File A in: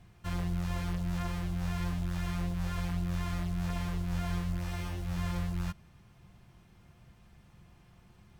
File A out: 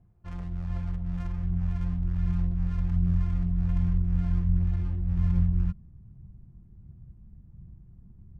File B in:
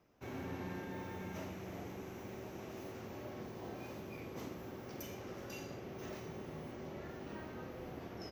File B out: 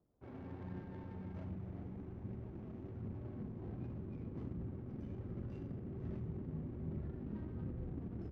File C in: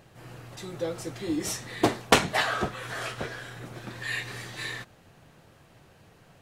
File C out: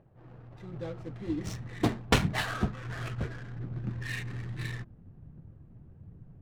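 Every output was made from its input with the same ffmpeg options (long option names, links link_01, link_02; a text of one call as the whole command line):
ffmpeg -i in.wav -af "aphaser=in_gain=1:out_gain=1:delay=4.9:decay=0.25:speed=1.3:type=triangular,adynamicsmooth=sensitivity=8:basefreq=710,asubboost=boost=7:cutoff=230,volume=-6dB" out.wav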